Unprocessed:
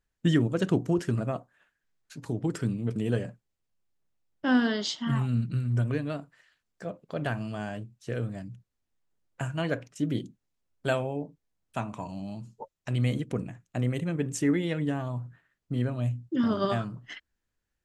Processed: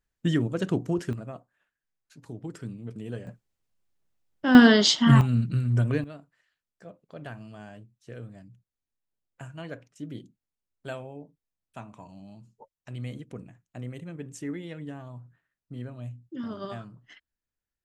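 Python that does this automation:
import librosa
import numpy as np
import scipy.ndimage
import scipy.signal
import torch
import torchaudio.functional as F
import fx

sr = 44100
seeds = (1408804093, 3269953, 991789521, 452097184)

y = fx.gain(x, sr, db=fx.steps((0.0, -1.5), (1.13, -8.5), (3.27, 2.0), (4.55, 11.0), (5.21, 3.0), (6.04, -9.5)))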